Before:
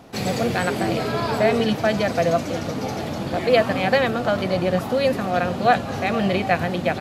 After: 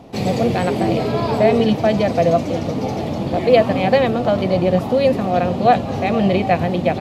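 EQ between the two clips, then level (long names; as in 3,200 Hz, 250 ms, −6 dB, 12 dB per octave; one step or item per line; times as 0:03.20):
parametric band 1,500 Hz −10.5 dB 0.71 octaves
high-shelf EQ 4,200 Hz −11.5 dB
+5.5 dB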